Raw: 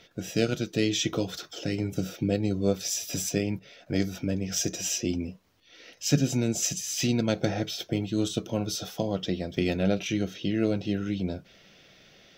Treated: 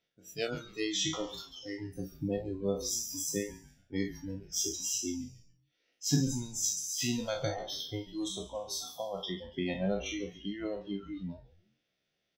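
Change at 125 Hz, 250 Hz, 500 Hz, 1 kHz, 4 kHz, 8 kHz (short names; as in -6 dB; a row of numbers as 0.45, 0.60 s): -9.0, -8.5, -7.0, -4.5, -4.0, -2.5 dB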